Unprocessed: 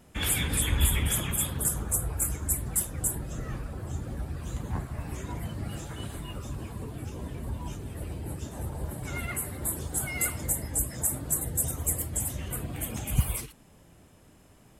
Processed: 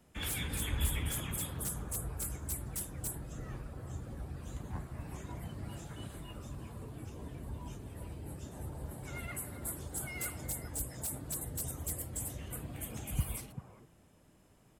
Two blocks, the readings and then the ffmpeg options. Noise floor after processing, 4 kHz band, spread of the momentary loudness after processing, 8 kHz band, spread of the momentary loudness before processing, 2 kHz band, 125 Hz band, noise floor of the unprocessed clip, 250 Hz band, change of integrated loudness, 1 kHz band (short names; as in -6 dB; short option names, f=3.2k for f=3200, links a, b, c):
-64 dBFS, -8.5 dB, 10 LU, -11.0 dB, 12 LU, -8.5 dB, -8.0 dB, -56 dBFS, -7.5 dB, -9.5 dB, -7.5 dB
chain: -filter_complex "[0:a]acrossover=split=110|1600[a][b][c];[b]aecho=1:1:391:0.531[d];[c]aeval=exprs='0.0708*(abs(mod(val(0)/0.0708+3,4)-2)-1)':c=same[e];[a][d][e]amix=inputs=3:normalize=0,volume=-8.5dB"